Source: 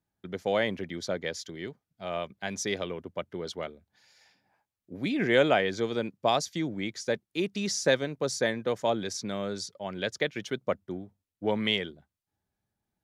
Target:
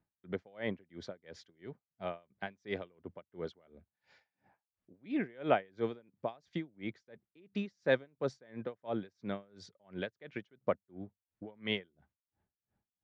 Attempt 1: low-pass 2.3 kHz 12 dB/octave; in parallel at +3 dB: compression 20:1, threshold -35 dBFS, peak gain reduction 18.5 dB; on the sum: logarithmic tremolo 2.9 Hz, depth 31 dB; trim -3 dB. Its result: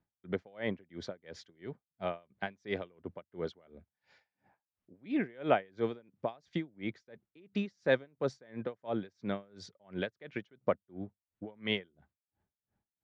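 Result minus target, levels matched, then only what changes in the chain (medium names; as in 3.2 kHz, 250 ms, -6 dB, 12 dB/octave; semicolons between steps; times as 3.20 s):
compression: peak gain reduction -10.5 dB
change: compression 20:1, threshold -46 dBFS, peak gain reduction 29 dB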